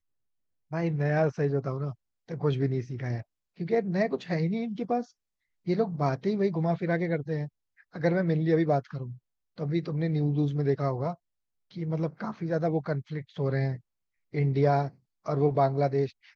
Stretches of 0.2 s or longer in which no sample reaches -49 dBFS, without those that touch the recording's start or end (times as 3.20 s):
1.94–2.29 s
3.22–3.57 s
5.10–5.66 s
7.48–7.80 s
9.17–9.58 s
11.15–11.71 s
13.80–14.33 s
14.91–15.26 s